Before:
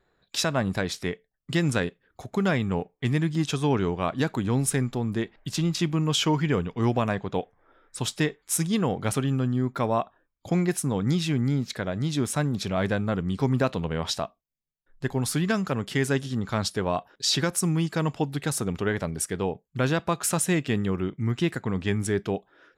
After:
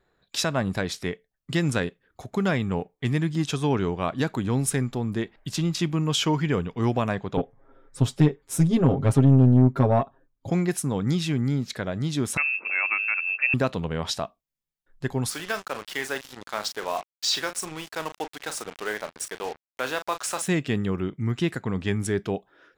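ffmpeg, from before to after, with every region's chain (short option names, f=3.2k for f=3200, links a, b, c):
-filter_complex "[0:a]asettb=1/sr,asplit=3[a][b][c];[a]atrim=end=7.374[d];[b]atrim=start=7.37:end=10.51,asetpts=PTS-STARTPTS,afade=t=in:d=0.004:c=qsin,afade=t=out:st=3.136:d=0.004:c=qsin,tiltshelf=f=840:g=7.5,aecho=1:1:7.4:0.93,atrim=end_sample=138474,aeval=exprs='(tanh(3.16*val(0)+0.4)-tanh(0.4))/3.16':c=same[e];[c]atrim=start=10.506[f];[d][e]acrossfade=d=0.004:c1=hsin:c2=qsin[g];[g][f]acrossfade=d=0.004:c1=qsin:c2=hsin,asettb=1/sr,asplit=3[h][i][j];[h]atrim=end=12.374[k];[i]atrim=start=12.37:end=13.54,asetpts=PTS-STARTPTS,afade=t=in:d=0.004:c=qsin,afade=t=out:st=1.166:d=0.004:c=qsin,lowpass=f=2.4k:t=q:w=0.5098,lowpass=f=2.4k:t=q:w=0.6013,lowpass=f=2.4k:t=q:w=0.9,lowpass=f=2.4k:t=q:w=2.563,afreqshift=-2800,highpass=250[l];[j]atrim=start=13.536[m];[k][l]acrossfade=d=0.004:c1=hsin:c2=qsin[n];[n][m]acrossfade=d=0.004:c1=qsin:c2=hsin,asettb=1/sr,asplit=3[o][p][q];[o]atrim=end=15.304[r];[p]atrim=start=15.3:end=20.48,asetpts=PTS-STARTPTS,afade=t=in:d=0.004:c=qsin,afade=t=out:st=5.176:d=0.004:c=qsin,highpass=550,lowpass=7.6k,asplit=2[s][t];[t]adelay=38,volume=-10dB[u];[s][u]amix=inputs=2:normalize=0,atrim=end_sample=228438,acrusher=bits=5:mix=0:aa=0.5[v];[q]atrim=start=20.476[w];[r][v]acrossfade=d=0.004:c1=hsin:c2=qsin[x];[x][w]acrossfade=d=0.004:c1=qsin:c2=hsin"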